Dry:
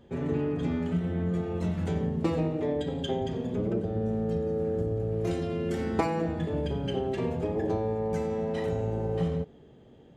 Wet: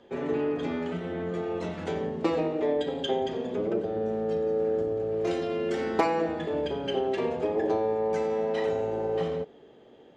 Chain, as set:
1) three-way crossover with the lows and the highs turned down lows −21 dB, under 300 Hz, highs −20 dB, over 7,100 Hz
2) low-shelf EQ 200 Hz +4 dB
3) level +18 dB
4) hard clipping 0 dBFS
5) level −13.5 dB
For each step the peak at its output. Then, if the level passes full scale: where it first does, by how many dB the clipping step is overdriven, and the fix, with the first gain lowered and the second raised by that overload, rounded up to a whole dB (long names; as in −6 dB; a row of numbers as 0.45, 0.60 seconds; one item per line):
−13.5, −13.0, +5.0, 0.0, −13.5 dBFS
step 3, 5.0 dB
step 3 +13 dB, step 5 −8.5 dB